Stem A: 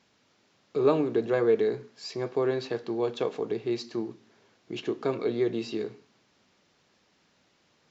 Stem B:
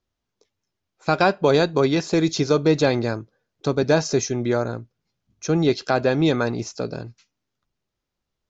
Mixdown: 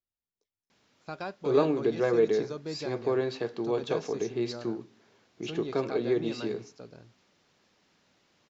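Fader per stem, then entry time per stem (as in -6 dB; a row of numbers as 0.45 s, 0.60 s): -1.0 dB, -19.5 dB; 0.70 s, 0.00 s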